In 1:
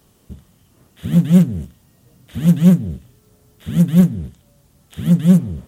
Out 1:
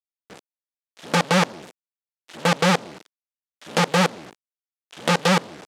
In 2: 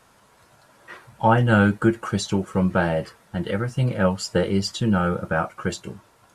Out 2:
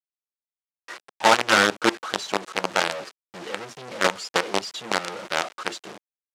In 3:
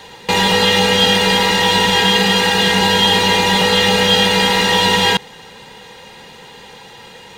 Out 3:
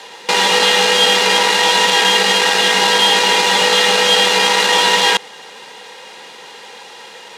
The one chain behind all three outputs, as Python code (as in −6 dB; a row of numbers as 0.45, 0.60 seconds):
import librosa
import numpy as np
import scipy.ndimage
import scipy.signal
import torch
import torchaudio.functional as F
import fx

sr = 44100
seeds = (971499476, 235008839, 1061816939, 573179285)

y = fx.quant_companded(x, sr, bits=2)
y = fx.bandpass_edges(y, sr, low_hz=370.0, high_hz=6600.0)
y = y * librosa.db_to_amplitude(-5.5)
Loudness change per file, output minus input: −6.0, −1.0, +1.0 LU